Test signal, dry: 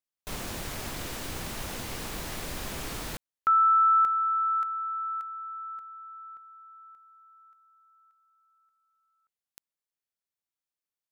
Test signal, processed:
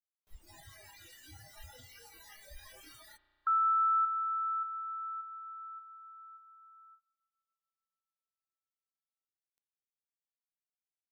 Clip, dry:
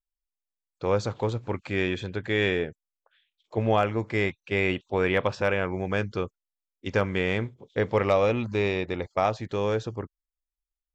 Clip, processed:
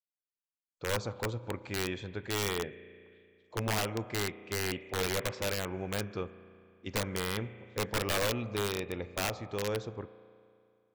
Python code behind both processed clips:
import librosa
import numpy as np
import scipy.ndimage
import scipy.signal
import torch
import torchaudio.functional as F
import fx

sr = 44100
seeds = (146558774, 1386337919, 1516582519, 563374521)

y = fx.noise_reduce_blind(x, sr, reduce_db=29)
y = fx.rev_spring(y, sr, rt60_s=2.4, pass_ms=(34,), chirp_ms=35, drr_db=14.5)
y = (np.mod(10.0 ** (16.5 / 20.0) * y + 1.0, 2.0) - 1.0) / 10.0 ** (16.5 / 20.0)
y = F.gain(torch.from_numpy(y), -7.5).numpy()